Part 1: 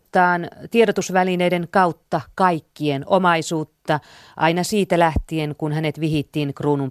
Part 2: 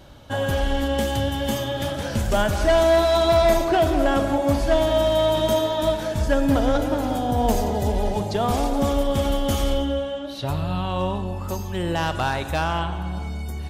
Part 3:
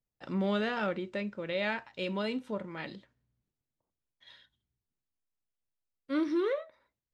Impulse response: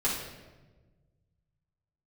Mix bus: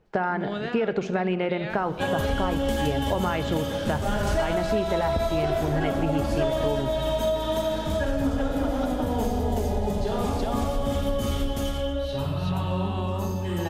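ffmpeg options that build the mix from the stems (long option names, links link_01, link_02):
-filter_complex "[0:a]lowpass=2700,alimiter=limit=-9.5dB:level=0:latency=1,volume=-1.5dB,asplit=2[link_01][link_02];[link_02]volume=-18.5dB[link_03];[1:a]adelay=1700,volume=-1.5dB,asplit=3[link_04][link_05][link_06];[link_05]volume=-11dB[link_07];[link_06]volume=-5.5dB[link_08];[2:a]alimiter=limit=-23.5dB:level=0:latency=1:release=366,volume=1dB,asplit=2[link_09][link_10];[link_10]apad=whole_len=678931[link_11];[link_04][link_11]sidechaingate=range=-33dB:threshold=-58dB:ratio=16:detection=peak[link_12];[3:a]atrim=start_sample=2205[link_13];[link_03][link_07]amix=inputs=2:normalize=0[link_14];[link_14][link_13]afir=irnorm=-1:irlink=0[link_15];[link_08]aecho=0:1:379:1[link_16];[link_01][link_12][link_09][link_15][link_16]amix=inputs=5:normalize=0,acompressor=threshold=-21dB:ratio=6"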